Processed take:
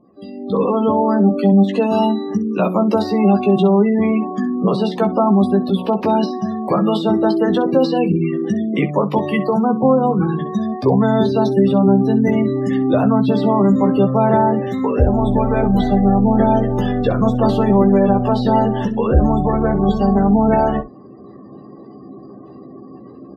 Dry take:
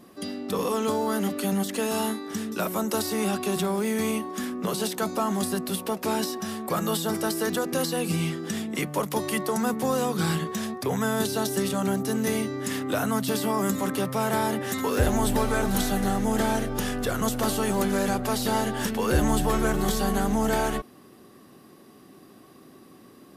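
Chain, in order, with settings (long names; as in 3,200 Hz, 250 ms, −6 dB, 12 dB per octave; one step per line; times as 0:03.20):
gate on every frequency bin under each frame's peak −20 dB strong
parametric band 1,500 Hz −10.5 dB 0.49 octaves
automatic gain control gain up to 15 dB
high-frequency loss of the air 280 metres
on a send: ambience of single reflections 15 ms −6 dB, 65 ms −16.5 dB
on the sum: level −1.5 dB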